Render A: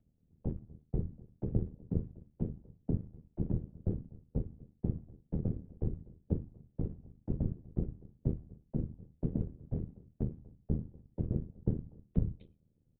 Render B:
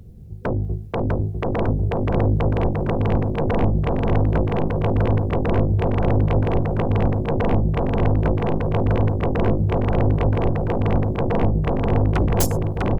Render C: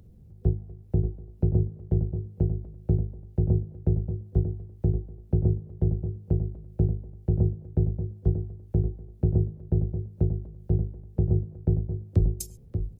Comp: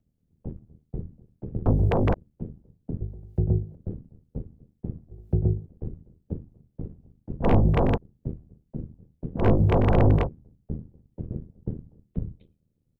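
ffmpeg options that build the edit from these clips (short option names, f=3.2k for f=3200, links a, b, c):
-filter_complex "[1:a]asplit=3[a][b][c];[2:a]asplit=2[d][e];[0:a]asplit=6[f][g][h][i][j][k];[f]atrim=end=1.662[l];[a]atrim=start=1.658:end=2.142[m];[g]atrim=start=2.138:end=3.012[n];[d]atrim=start=3.008:end=3.752[o];[h]atrim=start=3.748:end=5.112[p];[e]atrim=start=5.108:end=5.662[q];[i]atrim=start=5.658:end=7.46[r];[b]atrim=start=7.42:end=7.98[s];[j]atrim=start=7.94:end=9.46[t];[c]atrim=start=9.36:end=10.29[u];[k]atrim=start=10.19[v];[l][m]acrossfade=d=0.004:c1=hsin:c2=hsin[w];[w][n]acrossfade=d=0.004:c1=hsin:c2=hsin[x];[x][o]acrossfade=d=0.004:c1=hsin:c2=hsin[y];[y][p]acrossfade=d=0.004:c1=hsin:c2=hsin[z];[z][q]acrossfade=d=0.004:c1=hsin:c2=hsin[aa];[aa][r]acrossfade=d=0.004:c1=hsin:c2=hsin[ab];[ab][s]acrossfade=d=0.04:c1=tri:c2=tri[ac];[ac][t]acrossfade=d=0.04:c1=tri:c2=tri[ad];[ad][u]acrossfade=d=0.1:c1=tri:c2=tri[ae];[ae][v]acrossfade=d=0.1:c1=tri:c2=tri"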